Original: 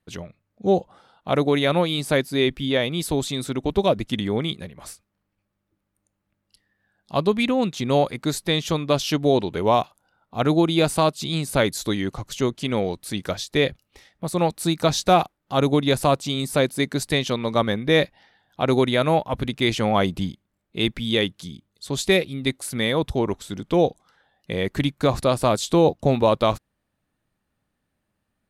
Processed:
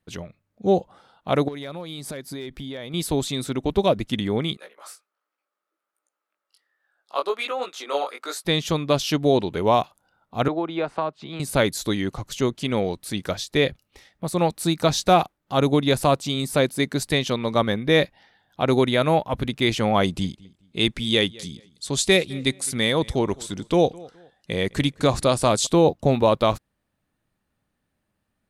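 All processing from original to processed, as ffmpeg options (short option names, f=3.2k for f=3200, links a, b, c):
-filter_complex "[0:a]asettb=1/sr,asplit=3[a][b][c];[a]atrim=end=1.484[d];[b]atrim=start=1.48:end=2.94,asetpts=PTS-STARTPTS,afade=t=in:d=0.004:c=qsin,afade=t=out:st=1.456:d=0.004:c=qsin,equalizer=f=2.7k:t=o:w=0.23:g=-6.5,volume=11dB,asoftclip=hard,volume=-11dB,acompressor=threshold=-30dB:ratio=8:attack=3.2:release=140:knee=1:detection=peak[e];[c]atrim=start=2.936[f];[d][e]acrossfade=d=0.004:c1=hsin:c2=qsin[g];[g][f]acrossfade=d=0.004:c1=qsin:c2=hsin,asettb=1/sr,asplit=3[h][i][j];[h]atrim=end=4.574[k];[i]atrim=start=4.57:end=8.45,asetpts=PTS-STARTPTS,afade=t=in:d=0.004:c=qsin,afade=t=out:st=3.876:d=0.004:c=qsin,highpass=f=430:w=0.5412,highpass=f=430:w=1.3066,equalizer=f=1.3k:t=o:w=0.33:g=11,flanger=delay=16:depth=5.7:speed=1.3[l];[j]atrim=start=8.446[m];[k][l]acrossfade=d=0.004:c1=hsin:c2=qsin[n];[n][m]acrossfade=d=0.004:c1=qsin:c2=hsin,asettb=1/sr,asplit=3[o][p][q];[o]atrim=end=10.484[r];[p]atrim=start=10.48:end=11.4,asetpts=PTS-STARTPTS,afade=t=in:d=0.004:c=qsin,afade=t=out:st=0.916:d=0.004:c=qsin,lowpass=1.3k,tiltshelf=f=720:g=-6,acrossover=split=110|280[s][t][u];[s]acompressor=threshold=-55dB:ratio=4[v];[t]acompressor=threshold=-41dB:ratio=4[w];[u]acompressor=threshold=-22dB:ratio=4[x];[v][w][x]amix=inputs=3:normalize=0[y];[q]atrim=start=11.396[z];[r][y]acrossfade=d=0.004:c1=hsin:c2=qsin[aa];[aa][z]acrossfade=d=0.004:c1=qsin:c2=hsin,asettb=1/sr,asplit=3[ab][ac][ad];[ab]atrim=end=20.034[ae];[ac]atrim=start=20.03:end=25.67,asetpts=PTS-STARTPTS,afade=t=in:d=0.004:c=qsin,afade=t=out:st=5.636:d=0.004:c=qsin,lowpass=f=10k:w=0.5412,lowpass=f=10k:w=1.3066,highshelf=f=5.4k:g=10,asplit=2[af][ag];[ag]adelay=209,lowpass=f=4.4k:p=1,volume=-22.5dB,asplit=2[ah][ai];[ai]adelay=209,lowpass=f=4.4k:p=1,volume=0.28[aj];[af][ah][aj]amix=inputs=3:normalize=0,atrim=end_sample=248724[ak];[ad]atrim=start=25.666[al];[ae][ak]acrossfade=d=0.004:c1=hsin:c2=qsin[am];[am][al]acrossfade=d=0.004:c1=qsin:c2=hsin"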